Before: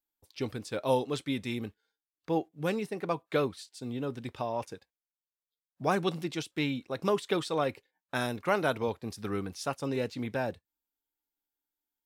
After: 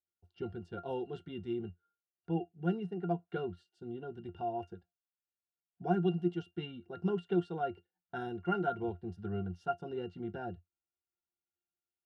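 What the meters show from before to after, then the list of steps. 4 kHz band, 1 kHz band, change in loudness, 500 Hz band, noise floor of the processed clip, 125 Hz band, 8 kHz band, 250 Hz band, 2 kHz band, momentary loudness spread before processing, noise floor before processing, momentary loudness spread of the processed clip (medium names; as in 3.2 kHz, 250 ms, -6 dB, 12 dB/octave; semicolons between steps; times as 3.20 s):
-13.5 dB, -4.5 dB, -4.5 dB, -6.0 dB, under -85 dBFS, -1.5 dB, under -25 dB, -2.5 dB, -9.5 dB, 9 LU, under -85 dBFS, 12 LU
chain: pitch-class resonator F, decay 0.12 s; trim +6.5 dB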